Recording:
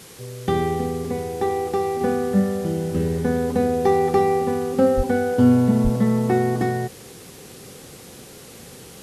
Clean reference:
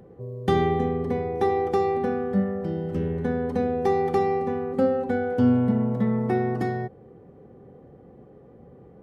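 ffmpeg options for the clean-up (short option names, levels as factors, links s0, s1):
-filter_complex "[0:a]asplit=3[s0][s1][s2];[s0]afade=t=out:st=4.96:d=0.02[s3];[s1]highpass=f=140:w=0.5412,highpass=f=140:w=1.3066,afade=t=in:st=4.96:d=0.02,afade=t=out:st=5.08:d=0.02[s4];[s2]afade=t=in:st=5.08:d=0.02[s5];[s3][s4][s5]amix=inputs=3:normalize=0,asplit=3[s6][s7][s8];[s6]afade=t=out:st=5.83:d=0.02[s9];[s7]highpass=f=140:w=0.5412,highpass=f=140:w=1.3066,afade=t=in:st=5.83:d=0.02,afade=t=out:st=5.95:d=0.02[s10];[s8]afade=t=in:st=5.95:d=0.02[s11];[s9][s10][s11]amix=inputs=3:normalize=0,afwtdn=0.0071,asetnsamples=n=441:p=0,asendcmd='2.01 volume volume -4.5dB',volume=1"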